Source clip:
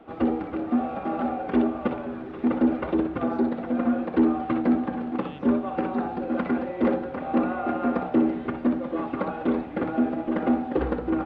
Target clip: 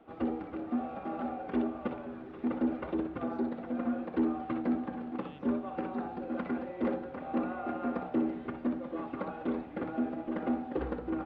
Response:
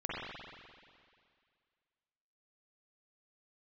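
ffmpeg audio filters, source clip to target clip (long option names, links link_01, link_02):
-af "volume=-9dB"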